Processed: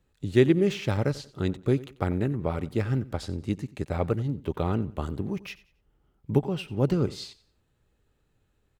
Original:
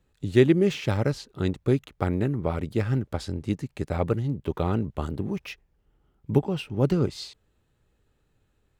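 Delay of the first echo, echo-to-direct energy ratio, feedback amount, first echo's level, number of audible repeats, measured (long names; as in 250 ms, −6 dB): 91 ms, −18.5 dB, 30%, −19.0 dB, 2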